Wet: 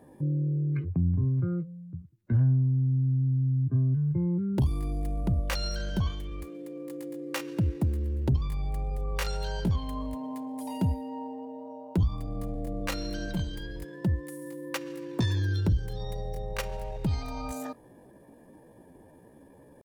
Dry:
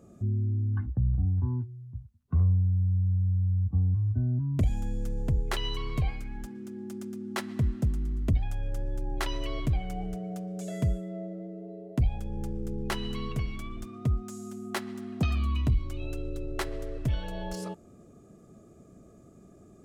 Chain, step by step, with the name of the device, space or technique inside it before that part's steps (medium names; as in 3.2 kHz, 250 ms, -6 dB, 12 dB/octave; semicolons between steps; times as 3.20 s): chipmunk voice (pitch shift +6 st)